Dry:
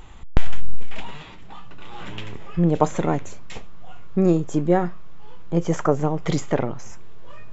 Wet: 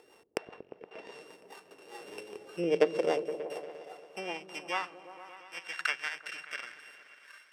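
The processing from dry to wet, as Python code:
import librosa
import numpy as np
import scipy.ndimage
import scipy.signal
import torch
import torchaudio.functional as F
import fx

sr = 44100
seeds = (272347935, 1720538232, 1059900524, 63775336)

y = np.r_[np.sort(x[:len(x) // 16 * 16].reshape(-1, 16), axis=1).ravel(), x[len(x) // 16 * 16:]]
y = fx.env_lowpass_down(y, sr, base_hz=2400.0, full_db=-10.5)
y = fx.rotary_switch(y, sr, hz=5.0, then_hz=0.8, switch_at_s=4.5)
y = fx.filter_sweep_highpass(y, sr, from_hz=440.0, to_hz=1600.0, start_s=2.79, end_s=5.78, q=3.5)
y = fx.echo_opening(y, sr, ms=117, hz=200, octaves=1, feedback_pct=70, wet_db=-6)
y = F.gain(torch.from_numpy(y), -8.5).numpy()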